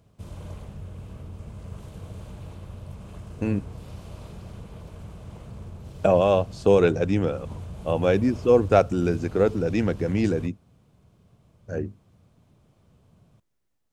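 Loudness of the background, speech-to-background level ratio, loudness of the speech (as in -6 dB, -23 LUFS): -41.0 LUFS, 18.0 dB, -23.0 LUFS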